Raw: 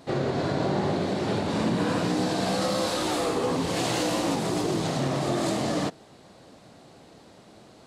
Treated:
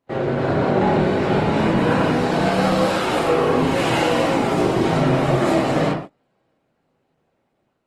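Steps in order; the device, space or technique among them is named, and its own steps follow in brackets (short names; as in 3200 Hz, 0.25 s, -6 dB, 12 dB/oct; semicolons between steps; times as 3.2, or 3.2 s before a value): resonant high shelf 3400 Hz -7 dB, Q 1.5; notches 50/100/150/200/250 Hz; speakerphone in a meeting room (reverb RT60 0.50 s, pre-delay 24 ms, DRR -4 dB; AGC gain up to 3.5 dB; gate -29 dBFS, range -25 dB; Opus 20 kbps 48000 Hz)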